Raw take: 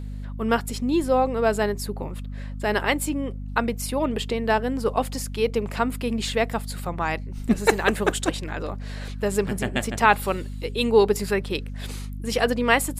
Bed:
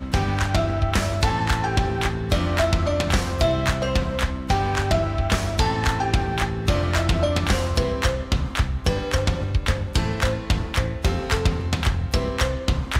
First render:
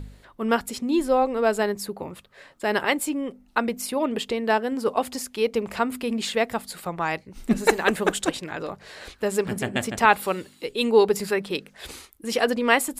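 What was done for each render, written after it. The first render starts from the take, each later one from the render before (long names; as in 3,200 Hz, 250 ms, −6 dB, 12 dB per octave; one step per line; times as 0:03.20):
hum removal 50 Hz, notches 5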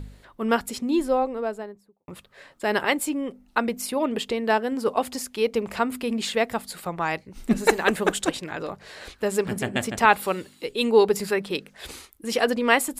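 0:00.80–0:02.08: fade out and dull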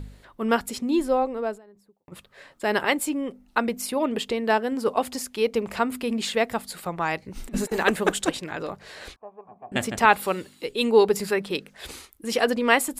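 0:01.55–0:02.12: downward compressor 10 to 1, threshold −45 dBFS
0:07.22–0:07.83: compressor whose output falls as the input rises −27 dBFS, ratio −0.5
0:09.16–0:09.72: formant resonators in series a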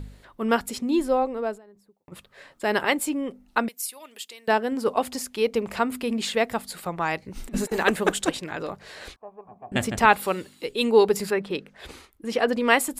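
0:03.68–0:04.48: first difference
0:09.28–0:10.13: low-shelf EQ 110 Hz +10 dB
0:11.30–0:12.53: high-shelf EQ 4,300 Hz −12 dB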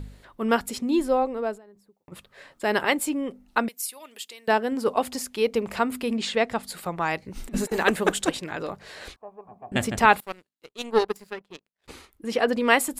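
0:06.17–0:06.63: low-pass filter 7,100 Hz
0:10.20–0:11.88: power curve on the samples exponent 2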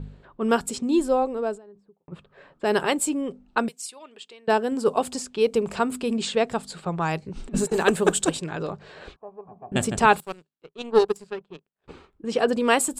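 low-pass that shuts in the quiet parts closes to 1,900 Hz, open at −22 dBFS
thirty-one-band graphic EQ 160 Hz +9 dB, 400 Hz +5 dB, 2,000 Hz −8 dB, 8,000 Hz +9 dB, 12,500 Hz −6 dB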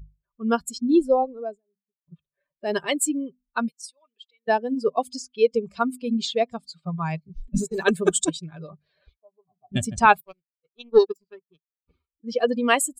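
spectral dynamics exaggerated over time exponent 2
automatic gain control gain up to 5 dB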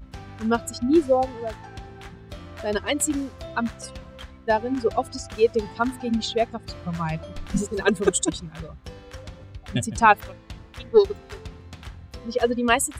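mix in bed −18 dB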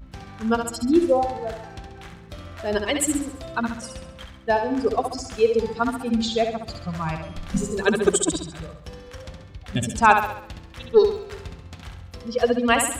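flutter between parallel walls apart 11.5 metres, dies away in 0.63 s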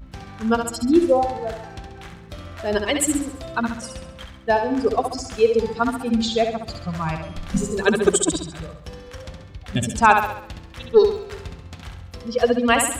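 level +2 dB
brickwall limiter −3 dBFS, peak gain reduction 1.5 dB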